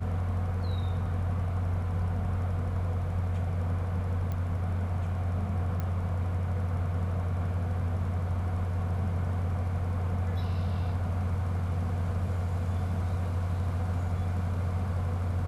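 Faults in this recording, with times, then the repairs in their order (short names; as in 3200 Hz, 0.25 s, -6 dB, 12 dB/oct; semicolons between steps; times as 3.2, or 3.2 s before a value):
4.32 pop -23 dBFS
5.8 pop -21 dBFS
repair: de-click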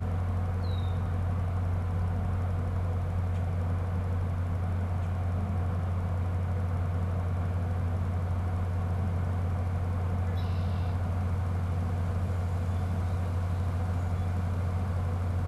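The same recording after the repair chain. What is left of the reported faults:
4.32 pop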